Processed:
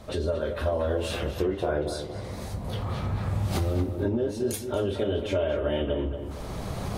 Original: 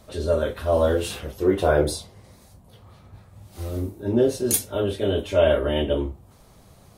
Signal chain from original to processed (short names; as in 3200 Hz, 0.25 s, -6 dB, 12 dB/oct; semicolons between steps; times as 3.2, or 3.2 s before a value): recorder AGC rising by 16 dB/s; high shelf 6500 Hz -11.5 dB; compressor 3:1, threshold -35 dBFS, peak gain reduction 16 dB; on a send: darkening echo 0.231 s, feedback 43%, low-pass 2900 Hz, level -8.5 dB; on the sum: gain +5.5 dB